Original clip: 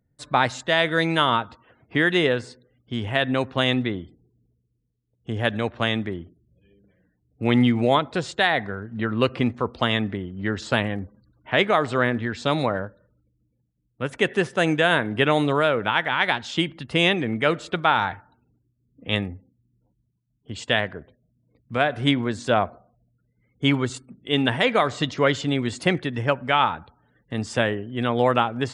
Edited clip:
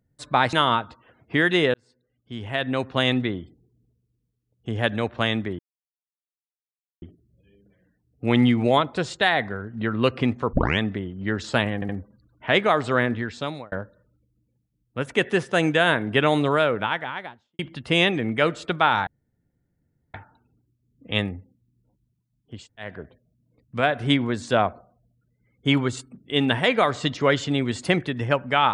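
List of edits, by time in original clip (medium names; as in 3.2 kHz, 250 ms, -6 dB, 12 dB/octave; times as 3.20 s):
0.53–1.14 s: delete
2.35–3.65 s: fade in
6.20 s: insert silence 1.43 s
9.71 s: tape start 0.26 s
10.93 s: stutter 0.07 s, 3 plays
12.18–12.76 s: fade out
15.66–16.63 s: studio fade out
18.11 s: insert room tone 1.07 s
20.55–20.86 s: room tone, crossfade 0.24 s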